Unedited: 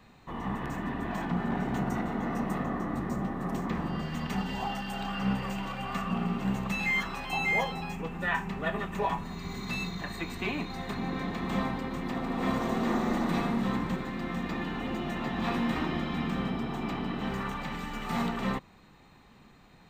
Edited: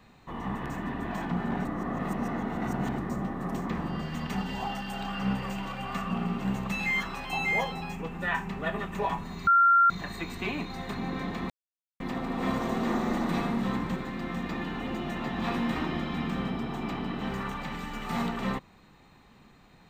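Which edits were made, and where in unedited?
0:01.65–0:02.98: reverse
0:09.47–0:09.90: beep over 1,380 Hz −16.5 dBFS
0:11.50–0:12.00: silence

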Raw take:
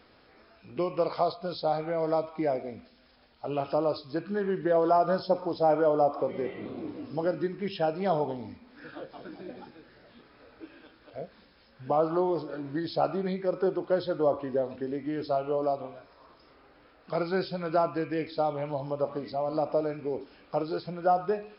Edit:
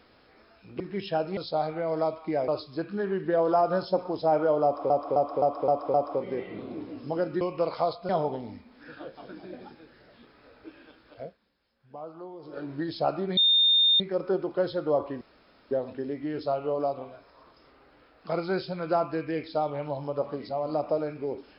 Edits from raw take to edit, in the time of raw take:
0:00.80–0:01.48: swap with 0:07.48–0:08.05
0:02.59–0:03.85: remove
0:06.01–0:06.27: repeat, 6 plays
0:11.18–0:12.53: duck −15.5 dB, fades 0.15 s
0:13.33: insert tone 3,640 Hz −17.5 dBFS 0.63 s
0:14.54: splice in room tone 0.50 s

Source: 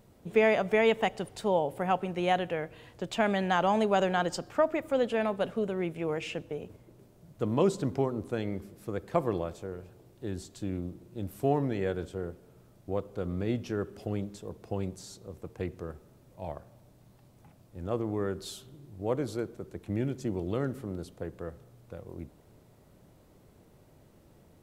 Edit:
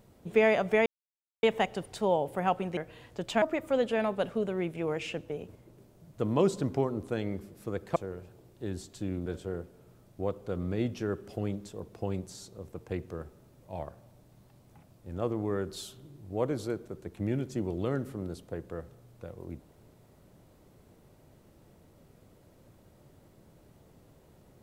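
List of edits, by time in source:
0:00.86: splice in silence 0.57 s
0:02.20–0:02.60: remove
0:03.25–0:04.63: remove
0:09.17–0:09.57: remove
0:10.87–0:11.95: remove

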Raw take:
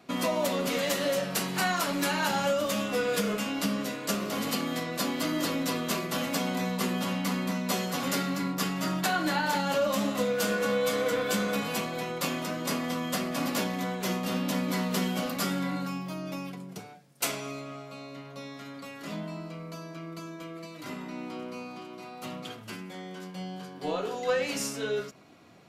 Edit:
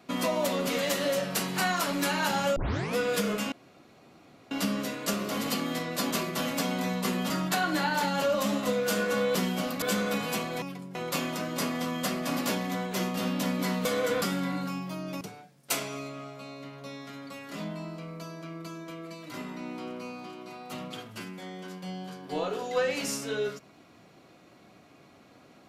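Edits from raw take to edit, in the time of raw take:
0:02.56: tape start 0.40 s
0:03.52: splice in room tone 0.99 s
0:05.12–0:05.87: remove
0:07.06–0:08.82: remove
0:10.87–0:11.24: swap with 0:14.94–0:15.41
0:16.40–0:16.73: move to 0:12.04

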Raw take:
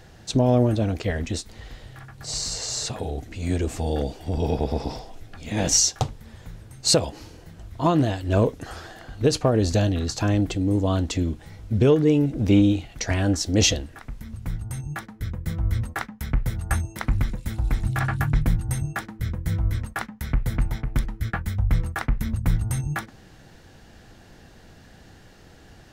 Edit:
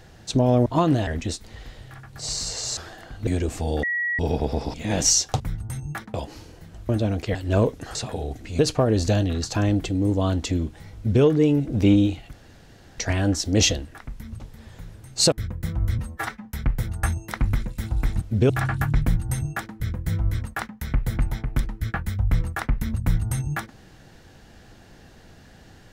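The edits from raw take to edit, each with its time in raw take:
0:00.66–0:01.12: swap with 0:07.74–0:08.15
0:02.82–0:03.46: swap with 0:08.75–0:09.25
0:04.02–0:04.38: beep over 1,920 Hz −22 dBFS
0:04.93–0:05.41: remove
0:06.07–0:06.99: swap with 0:14.41–0:15.15
0:11.61–0:11.89: duplicate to 0:17.89
0:12.99: splice in room tone 0.65 s
0:15.82–0:16.13: time-stretch 1.5×

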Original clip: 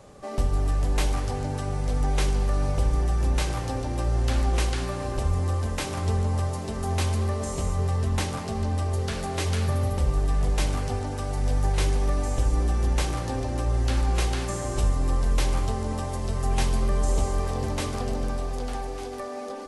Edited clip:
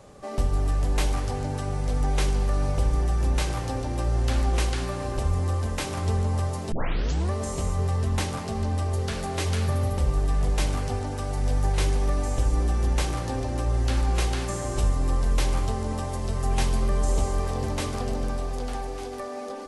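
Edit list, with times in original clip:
0:06.72: tape start 0.59 s

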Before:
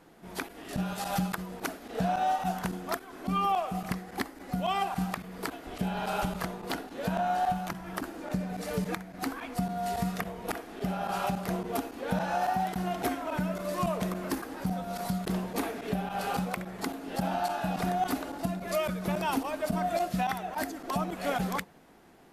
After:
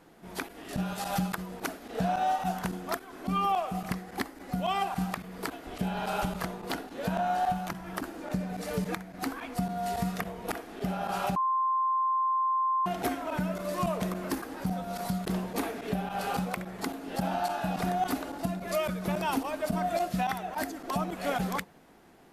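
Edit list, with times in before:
0:11.36–0:12.86: beep over 1,050 Hz −24 dBFS

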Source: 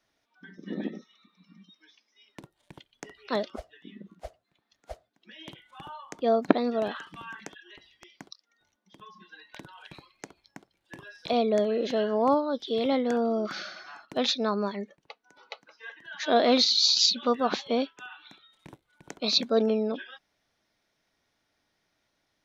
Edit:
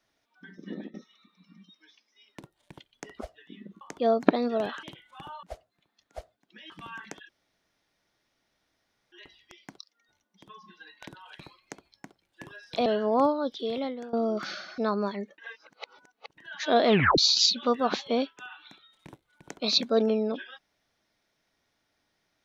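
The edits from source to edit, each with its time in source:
0:00.63–0:00.94: fade out, to −18.5 dB
0:03.19–0:03.54: remove
0:04.16–0:05.43: swap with 0:06.03–0:07.05
0:07.64: splice in room tone 1.83 s
0:11.38–0:11.94: remove
0:12.51–0:13.21: fade out, to −20 dB
0:13.86–0:14.38: remove
0:14.98–0:15.98: reverse
0:16.48: tape stop 0.30 s

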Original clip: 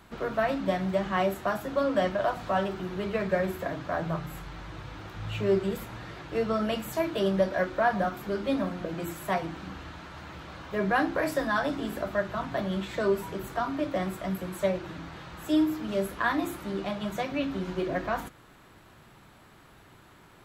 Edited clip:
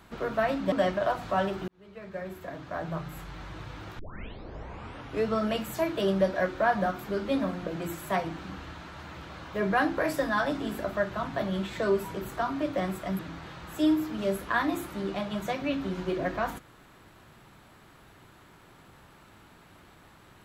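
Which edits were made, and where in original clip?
0:00.72–0:01.90: remove
0:02.86–0:04.61: fade in
0:05.17: tape start 1.27 s
0:14.37–0:14.89: remove

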